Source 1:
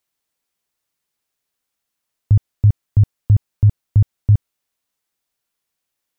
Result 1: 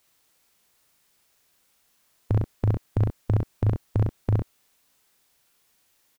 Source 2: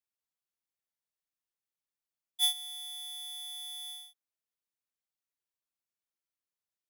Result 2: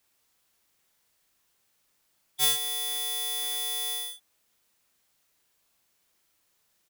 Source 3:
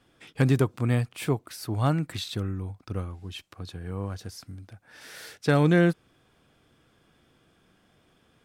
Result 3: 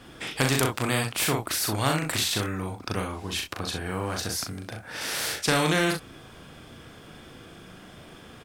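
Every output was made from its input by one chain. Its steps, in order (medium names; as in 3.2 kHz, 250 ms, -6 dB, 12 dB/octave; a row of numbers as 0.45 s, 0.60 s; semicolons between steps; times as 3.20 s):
early reflections 38 ms -4 dB, 64 ms -11 dB; spectrum-flattening compressor 2:1; normalise loudness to -27 LUFS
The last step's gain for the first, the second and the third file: -11.0 dB, +13.0 dB, +6.5 dB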